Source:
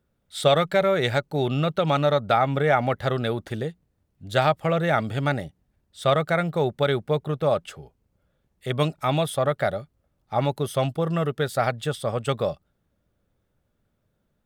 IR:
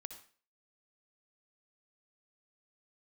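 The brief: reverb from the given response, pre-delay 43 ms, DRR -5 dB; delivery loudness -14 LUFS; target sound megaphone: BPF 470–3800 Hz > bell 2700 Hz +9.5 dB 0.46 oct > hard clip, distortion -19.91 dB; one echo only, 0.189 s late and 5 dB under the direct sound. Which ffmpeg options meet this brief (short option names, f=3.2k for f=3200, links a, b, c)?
-filter_complex "[0:a]aecho=1:1:189:0.562,asplit=2[a][b];[1:a]atrim=start_sample=2205,adelay=43[c];[b][c]afir=irnorm=-1:irlink=0,volume=9.5dB[d];[a][d]amix=inputs=2:normalize=0,highpass=470,lowpass=3.8k,equalizer=f=2.7k:t=o:w=0.46:g=9.5,asoftclip=type=hard:threshold=-8.5dB,volume=5dB"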